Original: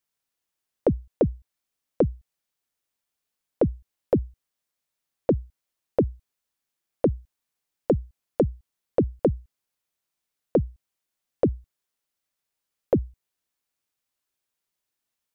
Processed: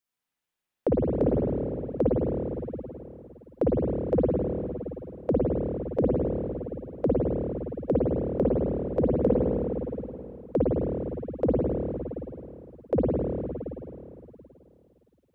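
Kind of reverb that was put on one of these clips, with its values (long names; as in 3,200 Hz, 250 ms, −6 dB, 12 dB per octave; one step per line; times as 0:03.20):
spring reverb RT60 3 s, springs 52/56 ms, chirp 45 ms, DRR −5.5 dB
level −5 dB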